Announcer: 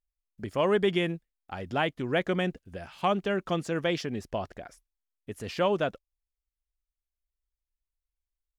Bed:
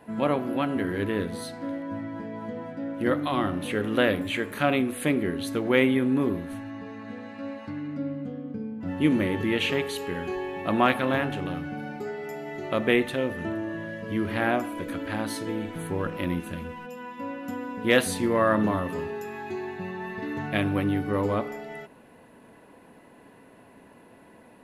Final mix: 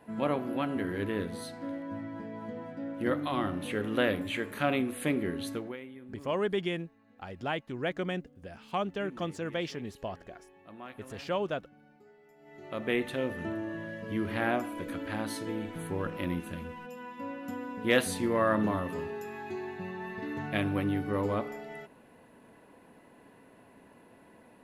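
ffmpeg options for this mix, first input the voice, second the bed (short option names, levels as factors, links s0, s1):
-filter_complex "[0:a]adelay=5700,volume=0.531[s0];[1:a]volume=5.62,afade=t=out:st=5.47:d=0.3:silence=0.105925,afade=t=in:st=12.37:d=0.87:silence=0.1[s1];[s0][s1]amix=inputs=2:normalize=0"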